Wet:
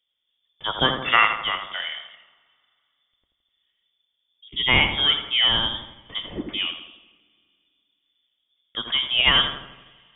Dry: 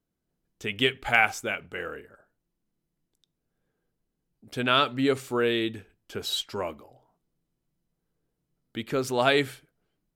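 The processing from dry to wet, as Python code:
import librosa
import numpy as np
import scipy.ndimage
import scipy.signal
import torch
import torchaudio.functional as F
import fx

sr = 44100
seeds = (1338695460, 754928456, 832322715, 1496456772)

p1 = fx.freq_invert(x, sr, carrier_hz=3500)
p2 = p1 + fx.echo_filtered(p1, sr, ms=83, feedback_pct=58, hz=1800.0, wet_db=-6.0, dry=0)
p3 = fx.rev_double_slope(p2, sr, seeds[0], early_s=0.34, late_s=2.4, knee_db=-18, drr_db=13.0)
p4 = fx.spec_box(p3, sr, start_s=4.49, length_s=0.2, low_hz=440.0, high_hz=1900.0, gain_db=-21)
y = p4 * 10.0 ** (4.0 / 20.0)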